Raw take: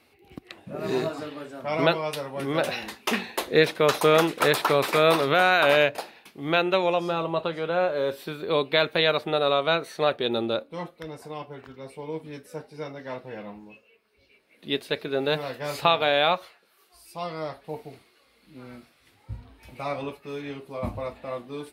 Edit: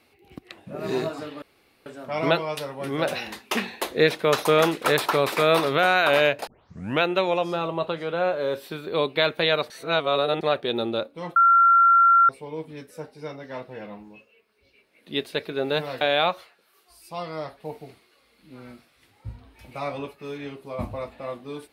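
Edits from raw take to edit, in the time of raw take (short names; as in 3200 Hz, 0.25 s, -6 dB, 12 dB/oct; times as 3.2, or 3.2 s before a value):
1.42 insert room tone 0.44 s
6.03 tape start 0.55 s
9.26–9.97 reverse
10.92–11.85 bleep 1370 Hz -12.5 dBFS
15.57–16.05 cut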